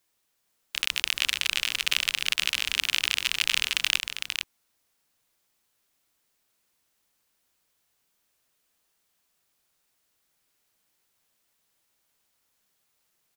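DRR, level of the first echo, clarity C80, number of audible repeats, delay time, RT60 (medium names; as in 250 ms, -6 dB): no reverb, -6.0 dB, no reverb, 1, 456 ms, no reverb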